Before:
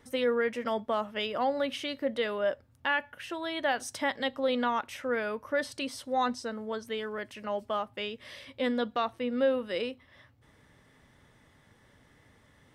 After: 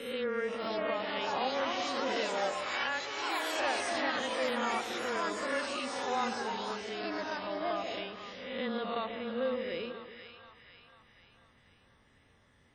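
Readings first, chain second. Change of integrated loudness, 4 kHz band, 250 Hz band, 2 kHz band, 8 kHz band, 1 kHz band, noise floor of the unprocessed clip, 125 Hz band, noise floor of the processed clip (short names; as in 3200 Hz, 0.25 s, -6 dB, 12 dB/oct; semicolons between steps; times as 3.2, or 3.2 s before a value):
-2.0 dB, +0.5 dB, -4.5 dB, -1.0 dB, +2.0 dB, -1.0 dB, -62 dBFS, -1.0 dB, -65 dBFS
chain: spectral swells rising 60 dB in 1.01 s; frequency shift -16 Hz; split-band echo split 860 Hz, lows 0.143 s, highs 0.49 s, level -8 dB; echoes that change speed 0.601 s, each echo +5 st, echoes 3; gain -8 dB; WMA 32 kbps 44100 Hz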